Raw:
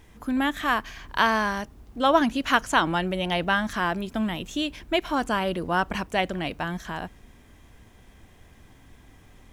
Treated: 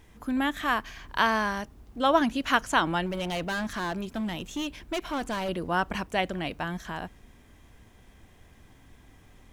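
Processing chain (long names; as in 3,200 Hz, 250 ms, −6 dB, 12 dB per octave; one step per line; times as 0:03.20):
0:03.06–0:05.49: hard clipping −24.5 dBFS, distortion −13 dB
level −2.5 dB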